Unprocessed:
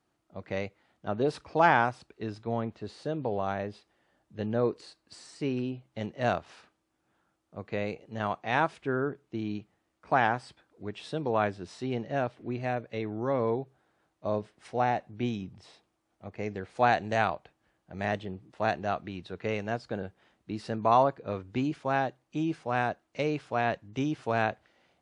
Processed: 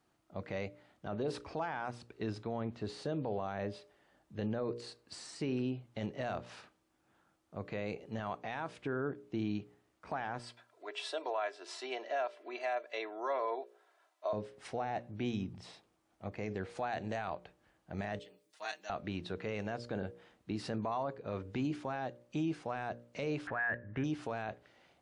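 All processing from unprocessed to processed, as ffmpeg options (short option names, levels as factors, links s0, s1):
-filter_complex "[0:a]asettb=1/sr,asplit=3[s0][s1][s2];[s0]atrim=end=10.394[s3];[s1]atrim=start=10.39:end=14.33,asetpts=PTS-STARTPTS,afade=t=in:d=0.004:c=qsin,afade=t=out:st=3.936:d=0.004:c=qsin,highpass=f=520:w=0.5412,highpass=f=520:w=1.3066,aecho=1:1:3:0.59,atrim=end_sample=173754[s4];[s2]atrim=start=14.326[s5];[s3][s4]acrossfade=d=0.004:c1=hsin:c2=qsin[s6];[s6][s5]acrossfade=d=0.004:c1=qsin:c2=hsin,asettb=1/sr,asplit=3[s7][s8][s9];[s7]atrim=end=18.194[s10];[s8]atrim=start=18.19:end=18.9,asetpts=PTS-STARTPTS,afade=t=in:d=0.004:c=qsin,afade=t=out:st=0.706:d=0.004:c=qsin,highpass=f=180:w=0.5412,highpass=f=180:w=1.3066,aderivative,aecho=1:1:6.4:0.91,atrim=end_sample=31311[s11];[s9]atrim=start=18.896[s12];[s10][s11]acrossfade=d=0.004:c1=hsin:c2=qsin[s13];[s13][s12]acrossfade=d=0.004:c1=qsin:c2=hsin,asettb=1/sr,asplit=3[s14][s15][s16];[s14]atrim=end=23.474[s17];[s15]atrim=start=23.47:end=24.04,asetpts=PTS-STARTPTS,afade=t=in:d=0.004:c=qsin,afade=t=out:st=0.566:d=0.004:c=qsin,lowshelf=f=90:g=11,acompressor=mode=upward:threshold=0.00631:ratio=2.5:attack=3.2:release=140:knee=2.83:detection=peak,lowpass=f=1700:t=q:w=12[s18];[s16]atrim=start=24.036[s19];[s17][s18]acrossfade=d=0.004:c1=hsin:c2=qsin[s20];[s20][s19]acrossfade=d=0.004:c1=qsin:c2=hsin,acompressor=threshold=0.02:ratio=2,bandreject=f=59.44:t=h:w=4,bandreject=f=118.88:t=h:w=4,bandreject=f=178.32:t=h:w=4,bandreject=f=237.76:t=h:w=4,bandreject=f=297.2:t=h:w=4,bandreject=f=356.64:t=h:w=4,bandreject=f=416.08:t=h:w=4,bandreject=f=475.52:t=h:w=4,bandreject=f=534.96:t=h:w=4,bandreject=f=594.4:t=h:w=4,alimiter=level_in=1.68:limit=0.0631:level=0:latency=1:release=13,volume=0.596,volume=1.19"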